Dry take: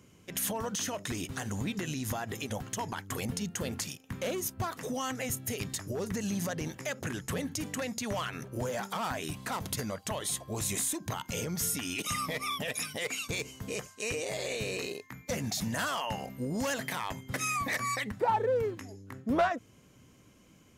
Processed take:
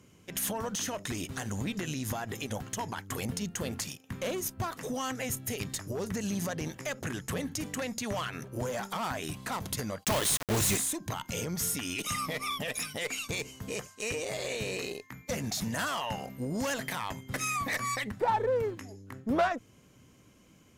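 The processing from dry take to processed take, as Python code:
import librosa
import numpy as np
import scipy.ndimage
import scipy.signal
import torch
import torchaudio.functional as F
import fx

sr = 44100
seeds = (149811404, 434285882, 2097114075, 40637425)

y = fx.cheby_harmonics(x, sr, harmonics=(4, 8), levels_db=(-27, -38), full_scale_db=-19.5)
y = fx.quant_companded(y, sr, bits=2, at=(10.03, 10.76), fade=0.02)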